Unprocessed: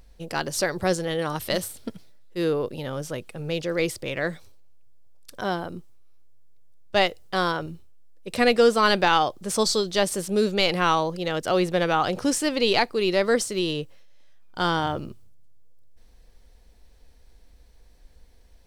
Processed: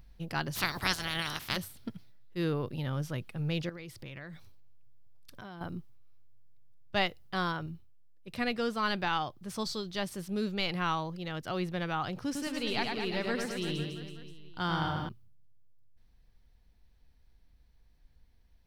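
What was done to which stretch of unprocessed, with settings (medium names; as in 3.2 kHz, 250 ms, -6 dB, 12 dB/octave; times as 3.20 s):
0.55–1.55 s: spectral peaks clipped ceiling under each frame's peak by 28 dB
3.69–5.61 s: compression 4:1, threshold -38 dBFS
12.25–15.09 s: reverse bouncing-ball echo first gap 100 ms, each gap 1.15×, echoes 6
whole clip: ten-band graphic EQ 125 Hz +7 dB, 500 Hz -8 dB, 8 kHz -10 dB; gain riding 2 s; trim -8.5 dB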